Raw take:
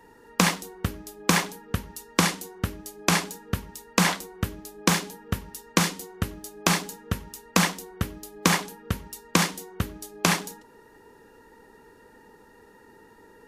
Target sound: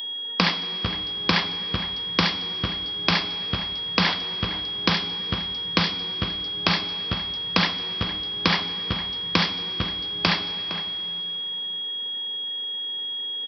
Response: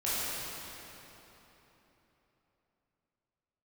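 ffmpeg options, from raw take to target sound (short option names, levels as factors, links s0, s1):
-filter_complex "[0:a]aresample=11025,aresample=44100,aeval=exprs='val(0)+0.0224*sin(2*PI*3300*n/s)':c=same,aemphasis=mode=production:type=75fm,asplit=2[s0][s1];[s1]adelay=460.6,volume=0.282,highshelf=f=4000:g=-10.4[s2];[s0][s2]amix=inputs=2:normalize=0,asplit=2[s3][s4];[1:a]atrim=start_sample=2205[s5];[s4][s5]afir=irnorm=-1:irlink=0,volume=0.1[s6];[s3][s6]amix=inputs=2:normalize=0,volume=0.841"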